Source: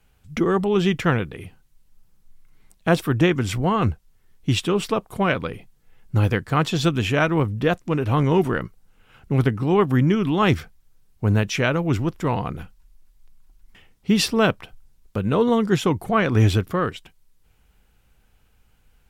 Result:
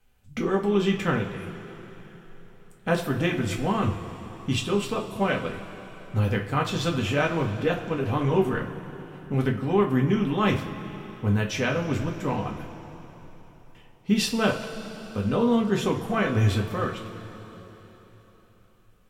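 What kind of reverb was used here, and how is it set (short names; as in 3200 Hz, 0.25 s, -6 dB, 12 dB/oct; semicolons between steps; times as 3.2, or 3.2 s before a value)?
two-slope reverb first 0.27 s, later 4 s, from -18 dB, DRR -1 dB; gain -7.5 dB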